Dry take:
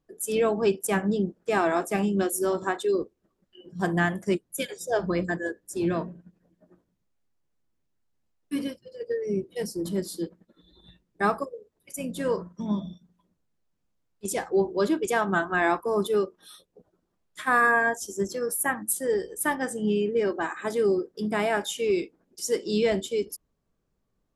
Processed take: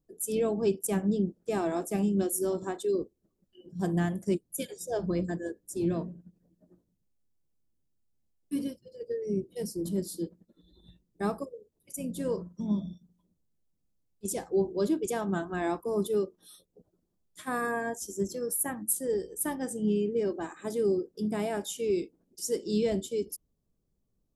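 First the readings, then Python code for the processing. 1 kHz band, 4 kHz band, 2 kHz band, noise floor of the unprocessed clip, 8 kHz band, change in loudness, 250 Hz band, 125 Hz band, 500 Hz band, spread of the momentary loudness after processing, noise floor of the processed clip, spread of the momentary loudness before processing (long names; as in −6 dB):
−10.0 dB, −7.5 dB, −14.0 dB, −76 dBFS, −2.0 dB, −4.5 dB, −2.0 dB, −1.0 dB, −4.5 dB, 10 LU, −77 dBFS, 10 LU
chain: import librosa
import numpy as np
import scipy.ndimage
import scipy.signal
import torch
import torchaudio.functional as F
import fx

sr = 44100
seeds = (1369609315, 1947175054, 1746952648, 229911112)

y = fx.peak_eq(x, sr, hz=1600.0, db=-14.0, octaves=2.6)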